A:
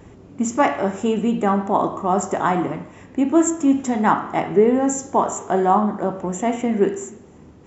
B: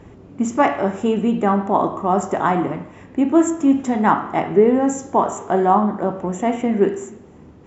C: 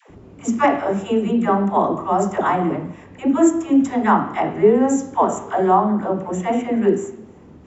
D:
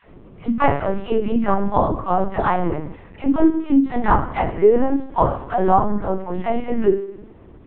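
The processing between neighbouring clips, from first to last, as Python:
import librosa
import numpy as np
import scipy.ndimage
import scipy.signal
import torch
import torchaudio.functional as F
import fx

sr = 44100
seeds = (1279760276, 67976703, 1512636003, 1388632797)

y1 = fx.high_shelf(x, sr, hz=6400.0, db=-11.5)
y1 = F.gain(torch.from_numpy(y1), 1.5).numpy()
y2 = fx.dispersion(y1, sr, late='lows', ms=101.0, hz=500.0)
y3 = fx.lpc_vocoder(y2, sr, seeds[0], excitation='pitch_kept', order=10)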